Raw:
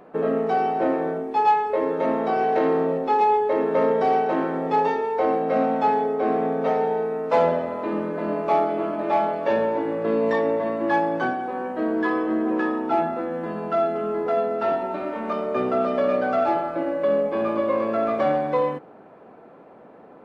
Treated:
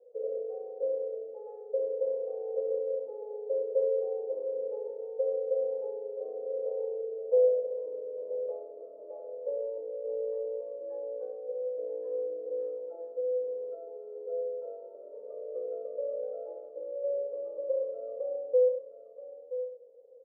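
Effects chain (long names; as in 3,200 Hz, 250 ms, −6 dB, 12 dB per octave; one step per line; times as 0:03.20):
flat-topped band-pass 500 Hz, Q 8
on a send: single-tap delay 975 ms −11.5 dB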